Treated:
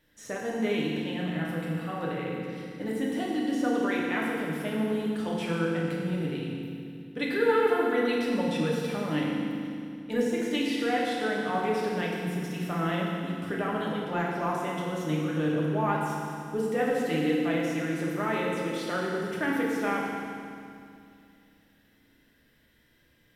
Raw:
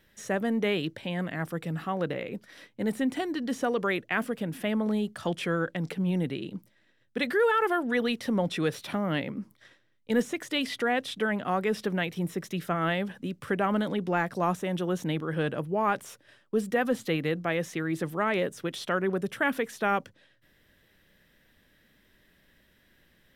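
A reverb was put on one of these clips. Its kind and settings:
feedback delay network reverb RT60 2.4 s, low-frequency decay 1.45×, high-frequency decay 0.95×, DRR −4.5 dB
level −6.5 dB

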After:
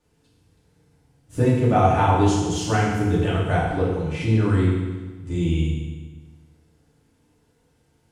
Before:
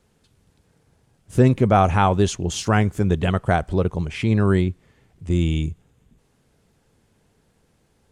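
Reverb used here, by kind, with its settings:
feedback delay network reverb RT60 1.3 s, low-frequency decay 1.2×, high-frequency decay 0.95×, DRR −7.5 dB
level −9.5 dB

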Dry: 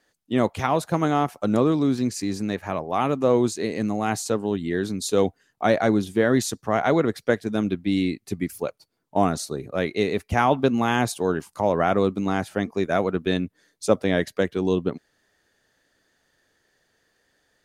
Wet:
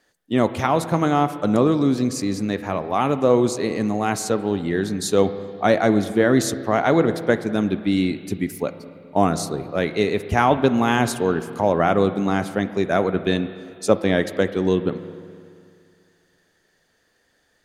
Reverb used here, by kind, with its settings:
spring reverb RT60 2.3 s, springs 30/42/48 ms, chirp 25 ms, DRR 11.5 dB
level +2.5 dB

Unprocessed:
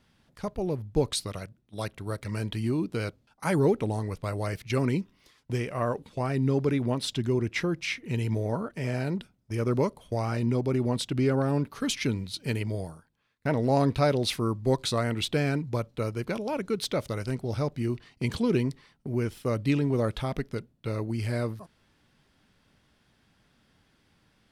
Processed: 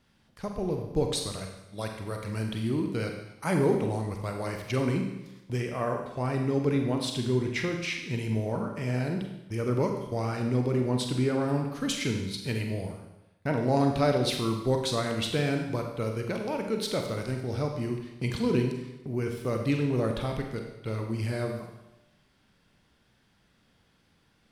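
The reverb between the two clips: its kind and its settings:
four-comb reverb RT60 0.95 s, combs from 32 ms, DRR 3 dB
level −2 dB

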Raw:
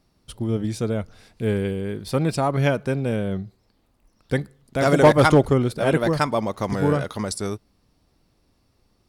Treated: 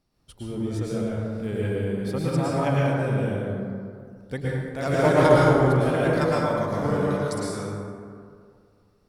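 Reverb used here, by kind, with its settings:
dense smooth reverb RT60 2.2 s, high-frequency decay 0.4×, pre-delay 95 ms, DRR −6.5 dB
level −9.5 dB

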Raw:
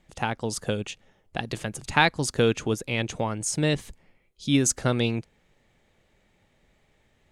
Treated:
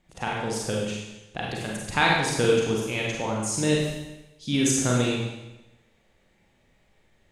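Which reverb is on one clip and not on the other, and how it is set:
four-comb reverb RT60 0.99 s, combs from 33 ms, DRR −3.5 dB
level −4 dB

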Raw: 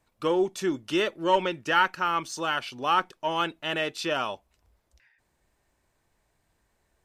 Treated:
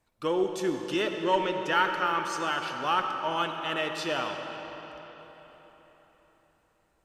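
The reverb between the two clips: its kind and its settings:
comb and all-pass reverb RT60 4.3 s, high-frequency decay 0.75×, pre-delay 25 ms, DRR 4.5 dB
level −3 dB

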